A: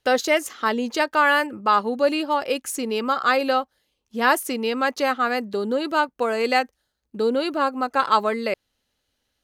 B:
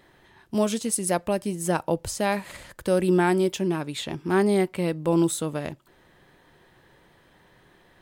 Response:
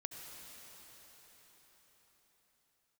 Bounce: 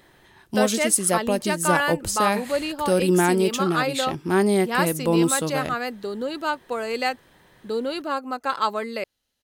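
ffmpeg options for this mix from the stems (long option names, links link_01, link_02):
-filter_complex "[0:a]adelay=500,volume=-5dB[link_01];[1:a]volume=1.5dB[link_02];[link_01][link_02]amix=inputs=2:normalize=0,highshelf=frequency=4800:gain=6"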